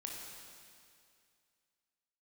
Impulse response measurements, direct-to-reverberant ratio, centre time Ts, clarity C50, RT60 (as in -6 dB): -1.5 dB, 0.105 s, 0.5 dB, 2.3 s